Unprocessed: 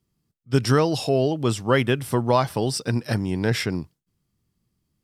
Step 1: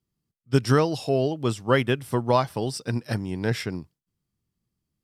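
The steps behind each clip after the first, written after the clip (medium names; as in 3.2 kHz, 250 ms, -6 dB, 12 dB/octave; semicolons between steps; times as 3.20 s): upward expansion 1.5:1, over -29 dBFS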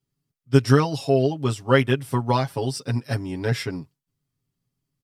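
comb 7.3 ms, depth 99%; trim -1.5 dB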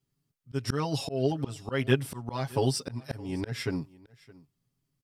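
slow attack 297 ms; delay 617 ms -22.5 dB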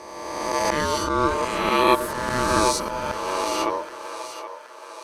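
reverse spectral sustain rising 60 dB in 1.78 s; ring modulator 750 Hz; two-band feedback delay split 410 Hz, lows 119 ms, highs 774 ms, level -11 dB; trim +6 dB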